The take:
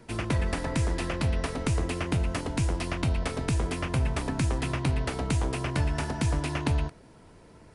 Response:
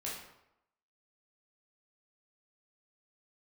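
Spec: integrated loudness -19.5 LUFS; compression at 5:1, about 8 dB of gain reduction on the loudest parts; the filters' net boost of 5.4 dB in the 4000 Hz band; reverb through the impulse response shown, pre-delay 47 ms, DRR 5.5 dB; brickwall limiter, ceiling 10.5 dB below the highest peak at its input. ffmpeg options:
-filter_complex "[0:a]equalizer=f=4k:t=o:g=7,acompressor=threshold=-31dB:ratio=5,alimiter=level_in=3dB:limit=-24dB:level=0:latency=1,volume=-3dB,asplit=2[a][b];[1:a]atrim=start_sample=2205,adelay=47[c];[b][c]afir=irnorm=-1:irlink=0,volume=-6.5dB[d];[a][d]amix=inputs=2:normalize=0,volume=17dB"

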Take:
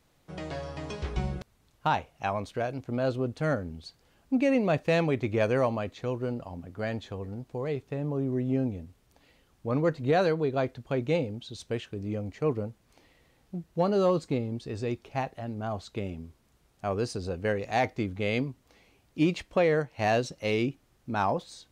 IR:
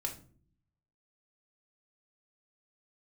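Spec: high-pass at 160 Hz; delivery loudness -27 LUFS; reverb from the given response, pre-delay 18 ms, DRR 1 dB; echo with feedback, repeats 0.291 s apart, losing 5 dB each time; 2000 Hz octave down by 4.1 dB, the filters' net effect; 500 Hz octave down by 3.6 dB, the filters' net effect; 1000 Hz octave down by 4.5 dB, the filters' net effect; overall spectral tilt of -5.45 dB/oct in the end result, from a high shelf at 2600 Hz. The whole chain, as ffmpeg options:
-filter_complex "[0:a]highpass=160,equalizer=f=500:t=o:g=-3,equalizer=f=1k:t=o:g=-4.5,equalizer=f=2k:t=o:g=-6.5,highshelf=f=2.6k:g=5.5,aecho=1:1:291|582|873|1164|1455|1746|2037:0.562|0.315|0.176|0.0988|0.0553|0.031|0.0173,asplit=2[a][b];[1:a]atrim=start_sample=2205,adelay=18[c];[b][c]afir=irnorm=-1:irlink=0,volume=-2dB[d];[a][d]amix=inputs=2:normalize=0,volume=2dB"

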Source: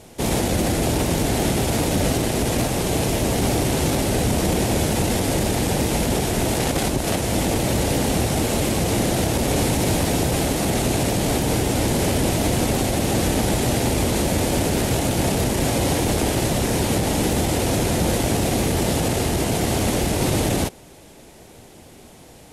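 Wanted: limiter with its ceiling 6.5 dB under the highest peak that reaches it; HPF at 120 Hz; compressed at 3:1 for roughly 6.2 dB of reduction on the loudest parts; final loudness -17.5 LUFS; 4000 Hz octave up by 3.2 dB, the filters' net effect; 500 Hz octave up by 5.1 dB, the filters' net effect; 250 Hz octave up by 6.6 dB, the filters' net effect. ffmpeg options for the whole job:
-af "highpass=120,equalizer=f=250:t=o:g=7.5,equalizer=f=500:t=o:g=4,equalizer=f=4k:t=o:g=4,acompressor=threshold=-21dB:ratio=3,volume=8dB,alimiter=limit=-8.5dB:level=0:latency=1"

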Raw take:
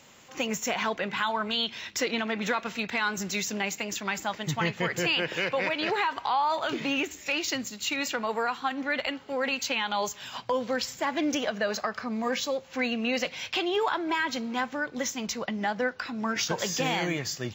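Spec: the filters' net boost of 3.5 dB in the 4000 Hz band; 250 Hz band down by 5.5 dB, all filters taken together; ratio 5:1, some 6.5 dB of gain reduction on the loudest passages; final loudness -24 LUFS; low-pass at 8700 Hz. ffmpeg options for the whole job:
-af "lowpass=8.7k,equalizer=f=250:t=o:g=-7,equalizer=f=4k:t=o:g=5,acompressor=threshold=-29dB:ratio=5,volume=8.5dB"

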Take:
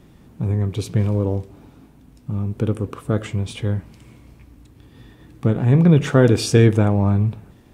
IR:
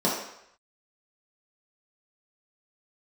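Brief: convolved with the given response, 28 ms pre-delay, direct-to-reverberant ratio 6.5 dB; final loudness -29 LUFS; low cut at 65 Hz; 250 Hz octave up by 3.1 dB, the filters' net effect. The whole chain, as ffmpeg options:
-filter_complex "[0:a]highpass=65,equalizer=f=250:t=o:g=4.5,asplit=2[a][b];[1:a]atrim=start_sample=2205,adelay=28[c];[b][c]afir=irnorm=-1:irlink=0,volume=-20.5dB[d];[a][d]amix=inputs=2:normalize=0,volume=-13dB"

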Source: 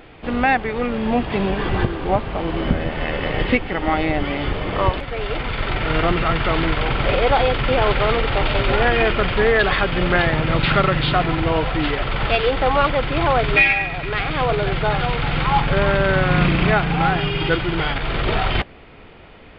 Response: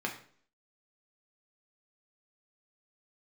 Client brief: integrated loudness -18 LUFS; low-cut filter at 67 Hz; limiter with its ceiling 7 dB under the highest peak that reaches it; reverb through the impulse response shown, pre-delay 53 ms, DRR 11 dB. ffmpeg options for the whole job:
-filter_complex "[0:a]highpass=67,alimiter=limit=-11dB:level=0:latency=1,asplit=2[a][b];[1:a]atrim=start_sample=2205,adelay=53[c];[b][c]afir=irnorm=-1:irlink=0,volume=-16dB[d];[a][d]amix=inputs=2:normalize=0,volume=3dB"

